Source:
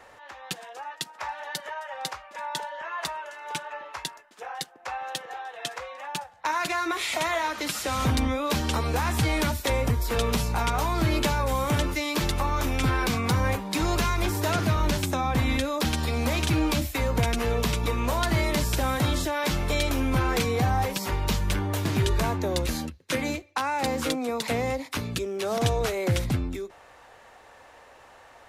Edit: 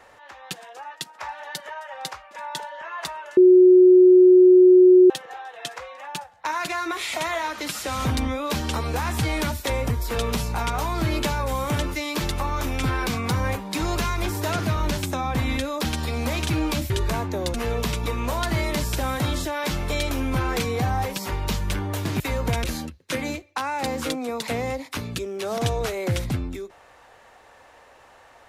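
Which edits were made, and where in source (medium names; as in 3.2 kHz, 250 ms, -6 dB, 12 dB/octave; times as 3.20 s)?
3.37–5.10 s: bleep 366 Hz -8.5 dBFS
16.90–17.34 s: swap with 22.00–22.64 s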